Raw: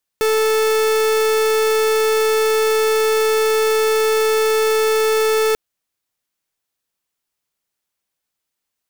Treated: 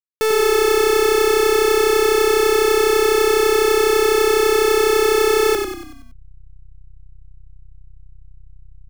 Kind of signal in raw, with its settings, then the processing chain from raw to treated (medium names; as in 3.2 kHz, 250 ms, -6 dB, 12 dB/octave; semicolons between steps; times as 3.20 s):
pulse 438 Hz, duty 44% -16 dBFS 5.34 s
hysteresis with a dead band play -33.5 dBFS; frequency-shifting echo 94 ms, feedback 49%, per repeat -32 Hz, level -5 dB